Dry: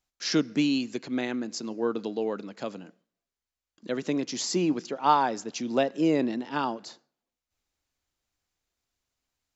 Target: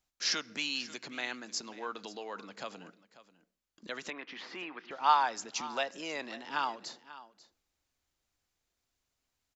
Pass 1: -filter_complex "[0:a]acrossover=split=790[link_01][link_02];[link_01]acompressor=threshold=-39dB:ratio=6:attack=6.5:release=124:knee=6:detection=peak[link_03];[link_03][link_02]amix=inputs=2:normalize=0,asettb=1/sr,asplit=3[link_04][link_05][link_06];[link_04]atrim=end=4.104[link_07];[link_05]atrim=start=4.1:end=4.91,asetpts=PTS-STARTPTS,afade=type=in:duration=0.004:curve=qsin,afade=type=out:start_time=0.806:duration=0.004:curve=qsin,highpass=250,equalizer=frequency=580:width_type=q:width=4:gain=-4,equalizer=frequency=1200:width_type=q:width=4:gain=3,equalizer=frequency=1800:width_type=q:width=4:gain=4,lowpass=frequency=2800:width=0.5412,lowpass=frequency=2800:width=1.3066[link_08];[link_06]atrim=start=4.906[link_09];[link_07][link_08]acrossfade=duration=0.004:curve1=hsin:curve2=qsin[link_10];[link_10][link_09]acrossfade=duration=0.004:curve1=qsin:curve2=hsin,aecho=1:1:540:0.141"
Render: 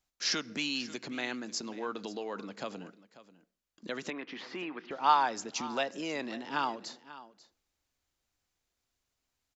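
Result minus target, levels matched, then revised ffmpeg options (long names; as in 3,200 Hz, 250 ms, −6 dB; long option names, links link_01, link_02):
downward compressor: peak gain reduction −8.5 dB
-filter_complex "[0:a]acrossover=split=790[link_01][link_02];[link_01]acompressor=threshold=-49dB:ratio=6:attack=6.5:release=124:knee=6:detection=peak[link_03];[link_03][link_02]amix=inputs=2:normalize=0,asettb=1/sr,asplit=3[link_04][link_05][link_06];[link_04]atrim=end=4.104[link_07];[link_05]atrim=start=4.1:end=4.91,asetpts=PTS-STARTPTS,afade=type=in:duration=0.004:curve=qsin,afade=type=out:start_time=0.806:duration=0.004:curve=qsin,highpass=250,equalizer=frequency=580:width_type=q:width=4:gain=-4,equalizer=frequency=1200:width_type=q:width=4:gain=3,equalizer=frequency=1800:width_type=q:width=4:gain=4,lowpass=frequency=2800:width=0.5412,lowpass=frequency=2800:width=1.3066[link_08];[link_06]atrim=start=4.906[link_09];[link_07][link_08]acrossfade=duration=0.004:curve1=hsin:curve2=qsin[link_10];[link_10][link_09]acrossfade=duration=0.004:curve1=qsin:curve2=hsin,aecho=1:1:540:0.141"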